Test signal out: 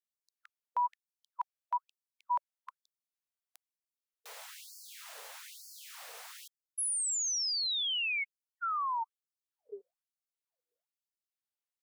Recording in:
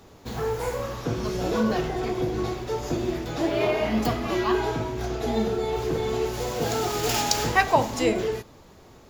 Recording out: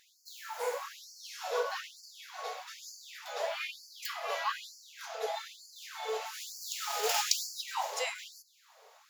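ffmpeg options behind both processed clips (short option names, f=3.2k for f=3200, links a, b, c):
-af "afftfilt=real='re*gte(b*sr/1024,410*pow(4400/410,0.5+0.5*sin(2*PI*1.1*pts/sr)))':imag='im*gte(b*sr/1024,410*pow(4400/410,0.5+0.5*sin(2*PI*1.1*pts/sr)))':win_size=1024:overlap=0.75,volume=-4dB"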